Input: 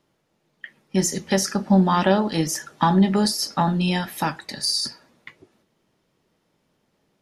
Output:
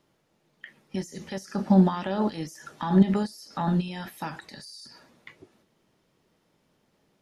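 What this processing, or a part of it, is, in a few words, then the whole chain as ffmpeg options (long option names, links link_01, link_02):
de-esser from a sidechain: -filter_complex "[0:a]asplit=2[link_01][link_02];[link_02]highpass=4000,apad=whole_len=318385[link_03];[link_01][link_03]sidechaincompress=threshold=-50dB:ratio=4:attack=3.9:release=43"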